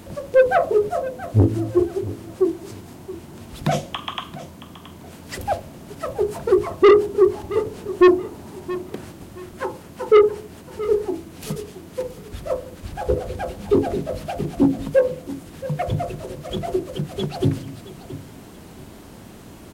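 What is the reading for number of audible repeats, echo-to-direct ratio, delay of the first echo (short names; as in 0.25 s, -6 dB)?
2, -15.0 dB, 0.674 s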